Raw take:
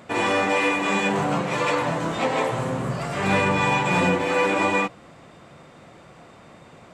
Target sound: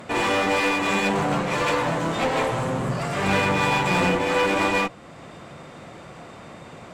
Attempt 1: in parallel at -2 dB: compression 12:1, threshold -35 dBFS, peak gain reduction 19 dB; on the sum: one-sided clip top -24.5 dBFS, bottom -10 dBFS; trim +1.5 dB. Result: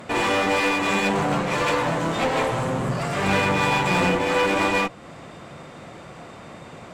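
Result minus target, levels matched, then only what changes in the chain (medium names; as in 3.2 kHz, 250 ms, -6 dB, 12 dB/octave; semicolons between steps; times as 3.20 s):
compression: peak gain reduction -8.5 dB
change: compression 12:1, threshold -44.5 dBFS, peak gain reduction 27.5 dB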